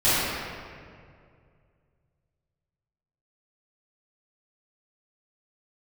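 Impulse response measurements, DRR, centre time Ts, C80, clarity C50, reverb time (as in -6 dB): -16.5 dB, 0.161 s, -2.5 dB, -5.0 dB, 2.2 s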